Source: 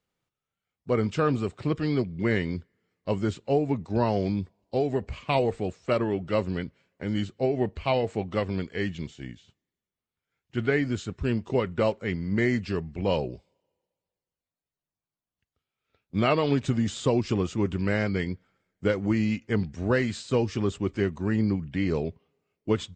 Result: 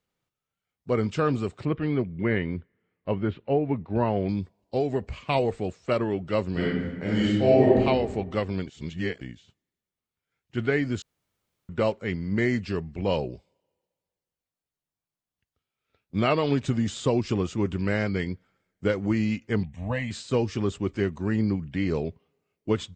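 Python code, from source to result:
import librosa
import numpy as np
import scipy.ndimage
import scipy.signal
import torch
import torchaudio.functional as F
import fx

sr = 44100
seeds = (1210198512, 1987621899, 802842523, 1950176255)

y = fx.lowpass(x, sr, hz=3000.0, slope=24, at=(1.65, 4.29))
y = fx.reverb_throw(y, sr, start_s=6.52, length_s=1.28, rt60_s=1.3, drr_db=-7.5)
y = fx.fixed_phaser(y, sr, hz=1400.0, stages=6, at=(19.63, 20.11))
y = fx.edit(y, sr, fx.reverse_span(start_s=8.67, length_s=0.54),
    fx.room_tone_fill(start_s=11.02, length_s=0.67), tone=tone)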